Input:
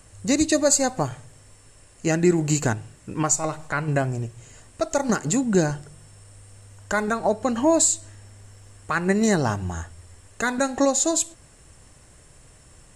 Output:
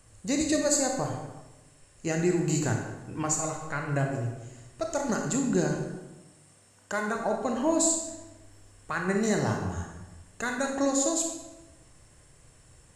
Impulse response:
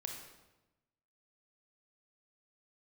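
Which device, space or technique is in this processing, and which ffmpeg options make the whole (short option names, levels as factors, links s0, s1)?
bathroom: -filter_complex "[0:a]asettb=1/sr,asplit=3[s0][s1][s2];[s0]atrim=end=5.764[s3];[s1]atrim=start=5.76:end=7.16,asetpts=PTS-STARTPTS,afade=t=in:d=0.004:c=qsin,afade=t=out:st=1.396:d=0.004:c=qsin,highpass=150[s4];[s2]atrim=start=7.156[s5];[s3][s4]acrossfade=d=0.004:c1=hsin:c2=qsin[s6];[s6][s5]acrossfade=d=0.004:c1=qsin:c2=hsin[s7];[1:a]atrim=start_sample=2205[s8];[s7][s8]afir=irnorm=-1:irlink=0,volume=0.631"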